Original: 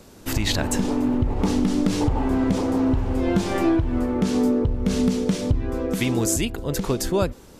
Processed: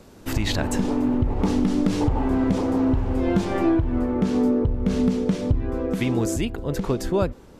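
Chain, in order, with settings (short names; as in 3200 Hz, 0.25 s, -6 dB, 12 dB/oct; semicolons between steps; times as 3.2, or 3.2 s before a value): high shelf 3600 Hz -6.5 dB, from 3.45 s -11.5 dB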